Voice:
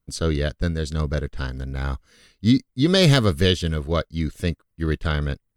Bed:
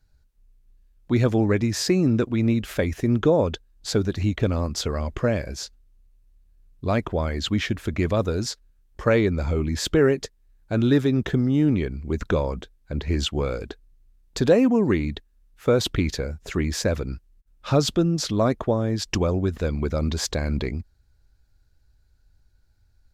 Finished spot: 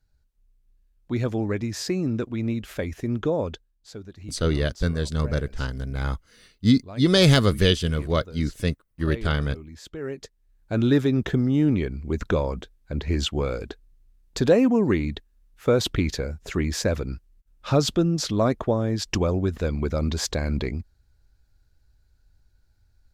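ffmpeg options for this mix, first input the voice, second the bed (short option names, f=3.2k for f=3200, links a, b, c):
-filter_complex "[0:a]adelay=4200,volume=-0.5dB[a];[1:a]volume=11dB,afade=t=out:st=3.51:d=0.29:silence=0.266073,afade=t=in:st=9.99:d=0.84:silence=0.149624[b];[a][b]amix=inputs=2:normalize=0"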